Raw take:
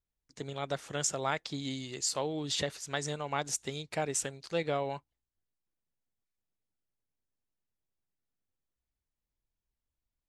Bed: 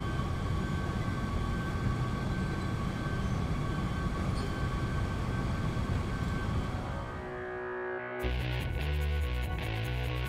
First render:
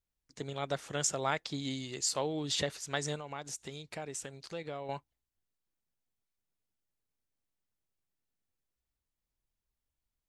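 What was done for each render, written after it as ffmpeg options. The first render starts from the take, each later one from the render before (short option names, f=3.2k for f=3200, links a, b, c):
-filter_complex "[0:a]asettb=1/sr,asplit=3[a][b][c];[a]atrim=end=3.194[d];[b]atrim=start=3.19:end=4.89,asetpts=PTS-STARTPTS,afade=t=in:d=0.004:c=qsin,afade=t=out:st=1.696:d=0.004:c=qsin,acompressor=threshold=-43dB:ratio=2:attack=3.2:release=140:knee=1:detection=peak[e];[c]atrim=start=4.886[f];[d][e]acrossfade=d=0.004:c1=hsin:c2=qsin[g];[g][f]acrossfade=d=0.004:c1=qsin:c2=hsin"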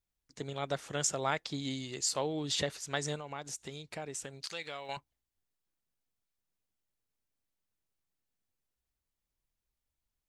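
-filter_complex "[0:a]asettb=1/sr,asplit=3[a][b][c];[a]atrim=end=4.434[d];[b]atrim=start=4.43:end=4.97,asetpts=PTS-STARTPTS,afade=t=in:d=0.004:c=qsin,afade=t=out:st=0.536:d=0.004:c=qsin,tiltshelf=f=900:g=-10[e];[c]atrim=start=4.966[f];[d][e]acrossfade=d=0.004:c1=hsin:c2=qsin[g];[g][f]acrossfade=d=0.004:c1=qsin:c2=hsin"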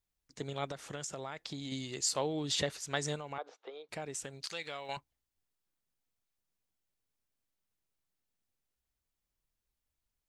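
-filter_complex "[0:a]asettb=1/sr,asplit=3[a][b][c];[a]atrim=end=0.694[d];[b]atrim=start=0.69:end=1.72,asetpts=PTS-STARTPTS,afade=t=in:d=0.004:c=qsin,afade=t=out:st=1.026:d=0.004:c=qsin,acompressor=threshold=-36dB:ratio=10:attack=3.2:release=140:knee=1:detection=peak[e];[c]atrim=start=1.716[f];[d][e]acrossfade=d=0.004:c1=hsin:c2=qsin[g];[g][f]acrossfade=d=0.004:c1=qsin:c2=hsin,asettb=1/sr,asplit=3[h][i][j];[h]atrim=end=3.384[k];[i]atrim=start=3.38:end=3.89,asetpts=PTS-STARTPTS,afade=t=in:d=0.004:c=qsin,afade=t=out:st=0.506:d=0.004:c=qsin,highpass=f=390:w=0.5412,highpass=f=390:w=1.3066,equalizer=f=500:t=q:w=4:g=8,equalizer=f=740:t=q:w=4:g=5,equalizer=f=1.2k:t=q:w=4:g=6,equalizer=f=1.9k:t=q:w=4:g=-7,equalizer=f=2.7k:t=q:w=4:g=-7,lowpass=f=3.1k:w=0.5412,lowpass=f=3.1k:w=1.3066[l];[j]atrim=start=3.886[m];[k][l]acrossfade=d=0.004:c1=hsin:c2=qsin[n];[n][m]acrossfade=d=0.004:c1=qsin:c2=hsin"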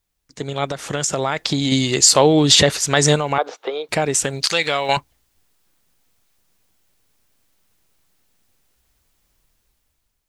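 -af "dynaudnorm=f=370:g=5:m=10.5dB,alimiter=level_in=11.5dB:limit=-1dB:release=50:level=0:latency=1"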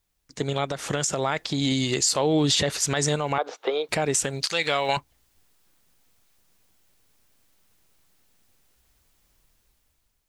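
-af "alimiter=limit=-12dB:level=0:latency=1:release=322"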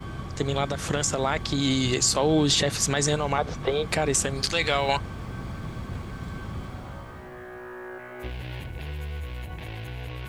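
-filter_complex "[1:a]volume=-2.5dB[a];[0:a][a]amix=inputs=2:normalize=0"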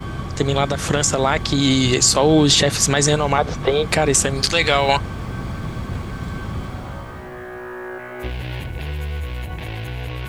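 -af "volume=7.5dB"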